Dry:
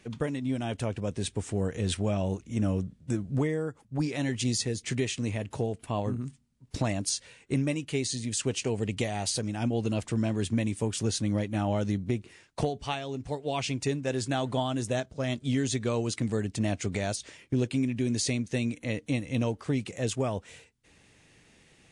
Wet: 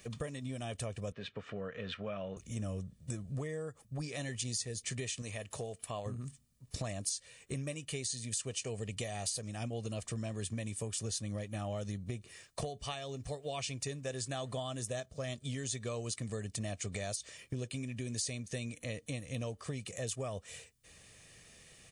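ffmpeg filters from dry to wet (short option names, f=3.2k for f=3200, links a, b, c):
-filter_complex "[0:a]asettb=1/sr,asplit=3[a][b][c];[a]atrim=end=1.124[d];[b]atrim=start=1.12:end=2.37,asetpts=PTS-STARTPTS,afade=t=in:d=0.004:c=qsin,afade=t=out:st=1.246:d=0.004:c=qsin,highpass=210,equalizer=f=350:t=q:w=4:g=-9,equalizer=f=750:t=q:w=4:g=-5,equalizer=f=1.4k:t=q:w=4:g=9,lowpass=f=3.2k:w=0.5412,lowpass=f=3.2k:w=1.3066[e];[c]atrim=start=2.366[f];[d][e]acrossfade=d=0.004:c1=hsin:c2=qsin[g];[g][f]acrossfade=d=0.004:c1=qsin:c2=hsin,asettb=1/sr,asplit=3[h][i][j];[h]atrim=end=5.224[k];[i]atrim=start=5.22:end=6.06,asetpts=PTS-STARTPTS,afade=t=in:d=0.004:c=qsin,afade=t=out:st=0.836:d=0.004:c=qsin,lowshelf=f=400:g=-8[l];[j]atrim=start=6.056[m];[k][l]acrossfade=d=0.004:c1=hsin:c2=qsin[n];[n][m]acrossfade=d=0.004:c1=qsin:c2=hsin,aemphasis=mode=production:type=50kf,aecho=1:1:1.7:0.48,acompressor=threshold=-38dB:ratio=2.5,volume=-2dB"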